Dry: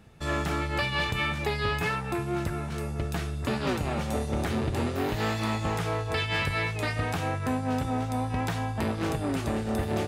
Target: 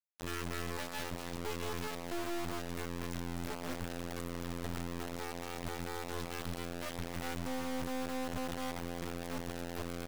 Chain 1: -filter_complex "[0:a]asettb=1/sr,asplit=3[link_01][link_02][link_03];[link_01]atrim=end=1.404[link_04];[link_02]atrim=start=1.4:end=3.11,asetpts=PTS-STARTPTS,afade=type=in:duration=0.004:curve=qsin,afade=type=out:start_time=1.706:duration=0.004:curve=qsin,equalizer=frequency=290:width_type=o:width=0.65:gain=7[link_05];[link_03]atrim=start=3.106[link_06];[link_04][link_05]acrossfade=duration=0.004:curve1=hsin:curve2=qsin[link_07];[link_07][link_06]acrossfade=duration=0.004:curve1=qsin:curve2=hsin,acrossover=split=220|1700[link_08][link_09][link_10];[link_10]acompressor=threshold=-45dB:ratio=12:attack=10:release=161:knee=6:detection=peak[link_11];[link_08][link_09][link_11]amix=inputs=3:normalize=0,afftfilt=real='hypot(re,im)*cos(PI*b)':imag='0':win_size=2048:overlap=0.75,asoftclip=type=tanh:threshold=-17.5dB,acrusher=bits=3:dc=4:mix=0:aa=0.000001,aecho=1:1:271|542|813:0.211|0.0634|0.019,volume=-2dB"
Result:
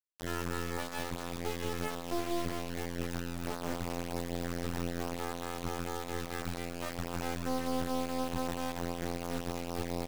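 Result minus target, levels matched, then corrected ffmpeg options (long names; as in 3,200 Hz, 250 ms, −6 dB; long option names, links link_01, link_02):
soft clipping: distortion −10 dB
-filter_complex "[0:a]asettb=1/sr,asplit=3[link_01][link_02][link_03];[link_01]atrim=end=1.404[link_04];[link_02]atrim=start=1.4:end=3.11,asetpts=PTS-STARTPTS,afade=type=in:duration=0.004:curve=qsin,afade=type=out:start_time=1.706:duration=0.004:curve=qsin,equalizer=frequency=290:width_type=o:width=0.65:gain=7[link_05];[link_03]atrim=start=3.106[link_06];[link_04][link_05]acrossfade=duration=0.004:curve1=hsin:curve2=qsin[link_07];[link_07][link_06]acrossfade=duration=0.004:curve1=qsin:curve2=hsin,acrossover=split=220|1700[link_08][link_09][link_10];[link_10]acompressor=threshold=-45dB:ratio=12:attack=10:release=161:knee=6:detection=peak[link_11];[link_08][link_09][link_11]amix=inputs=3:normalize=0,afftfilt=real='hypot(re,im)*cos(PI*b)':imag='0':win_size=2048:overlap=0.75,asoftclip=type=tanh:threshold=-25.5dB,acrusher=bits=3:dc=4:mix=0:aa=0.000001,aecho=1:1:271|542|813:0.211|0.0634|0.019,volume=-2dB"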